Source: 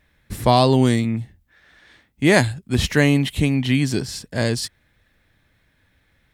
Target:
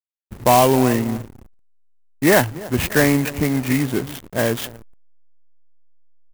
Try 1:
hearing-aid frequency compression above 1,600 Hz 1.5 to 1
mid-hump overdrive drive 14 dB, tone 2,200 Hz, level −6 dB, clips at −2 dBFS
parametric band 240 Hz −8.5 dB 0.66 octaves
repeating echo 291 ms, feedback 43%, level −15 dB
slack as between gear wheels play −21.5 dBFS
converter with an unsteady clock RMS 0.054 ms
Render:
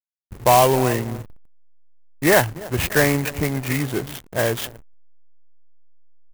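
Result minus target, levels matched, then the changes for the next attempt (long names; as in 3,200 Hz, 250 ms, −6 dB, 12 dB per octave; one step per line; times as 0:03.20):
250 Hz band −4.0 dB
remove: parametric band 240 Hz −8.5 dB 0.66 octaves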